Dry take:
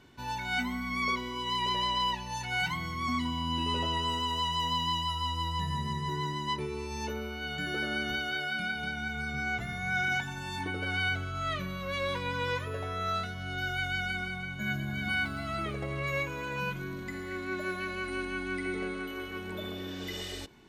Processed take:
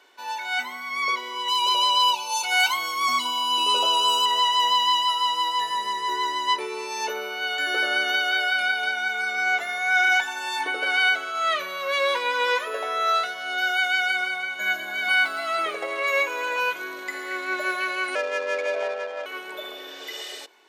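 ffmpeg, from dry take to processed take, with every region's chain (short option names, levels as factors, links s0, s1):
-filter_complex "[0:a]asettb=1/sr,asplit=3[s0][s1][s2];[s0]atrim=end=1.484[s3];[s1]atrim=start=1.48:end=4.26,asetpts=PTS-STARTPTS,afade=t=in:d=0.004:c=qsin,afade=t=out:st=2.776:d=0.004:c=qsin,asuperstop=centerf=1800:order=8:qfactor=2.9,aemphasis=mode=production:type=cd[s4];[s2]atrim=start=4.256[s5];[s3][s4]acrossfade=d=0.004:c1=hsin:c2=qsin[s6];[s6][s5]acrossfade=d=0.004:c1=qsin:c2=hsin,asettb=1/sr,asplit=3[s7][s8][s9];[s7]atrim=end=18.154[s10];[s8]atrim=start=18.15:end=19.26,asetpts=PTS-STARTPTS,afade=t=in:d=0.004:c=qsin,afade=t=out:st=1.106:d=0.004:c=qsin,afreqshift=220,adynamicsmooth=sensitivity=4.5:basefreq=940[s11];[s9]atrim=start=19.256[s12];[s10][s11]acrossfade=d=0.004:c1=hsin:c2=qsin[s13];[s13][s12]acrossfade=d=0.004:c1=qsin:c2=hsin,dynaudnorm=f=110:g=31:m=1.88,highpass=f=460:w=0.5412,highpass=f=460:w=1.3066,volume=1.78"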